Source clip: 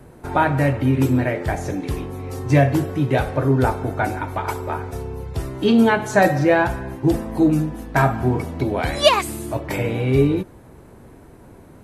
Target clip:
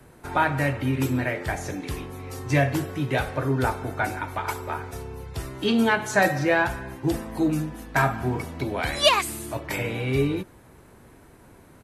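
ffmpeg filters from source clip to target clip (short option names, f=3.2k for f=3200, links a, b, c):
-filter_complex "[0:a]acrossover=split=290|1100[a][b][c];[c]acontrast=81[d];[a][b][d]amix=inputs=3:normalize=0,aresample=32000,aresample=44100,volume=-7dB"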